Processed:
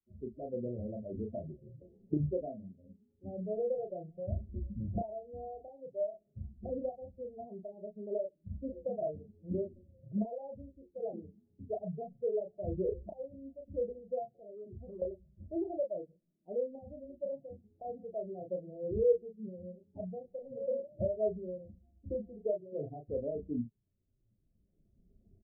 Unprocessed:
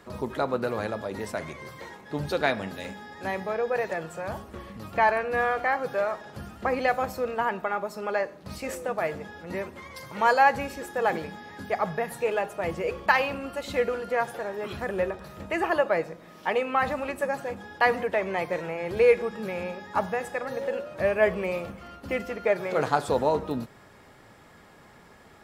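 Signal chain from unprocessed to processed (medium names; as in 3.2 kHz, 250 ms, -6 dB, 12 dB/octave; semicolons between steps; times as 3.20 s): expander on every frequency bin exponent 2; recorder AGC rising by 13 dB/s; steep low-pass 680 Hz 96 dB/octave; 14.34–15.02 s: compression 12:1, threshold -37 dBFS, peak gain reduction 17 dB; doubling 33 ms -4 dB; trim -8.5 dB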